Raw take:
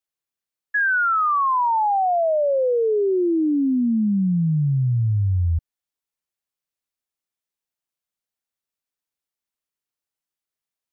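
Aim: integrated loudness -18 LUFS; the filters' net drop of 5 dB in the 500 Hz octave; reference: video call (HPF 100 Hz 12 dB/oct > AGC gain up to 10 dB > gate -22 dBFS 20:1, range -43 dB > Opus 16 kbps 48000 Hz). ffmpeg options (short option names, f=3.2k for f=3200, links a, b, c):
-af "highpass=100,equalizer=f=500:t=o:g=-6.5,dynaudnorm=m=10dB,agate=range=-43dB:threshold=-22dB:ratio=20,volume=4dB" -ar 48000 -c:a libopus -b:a 16k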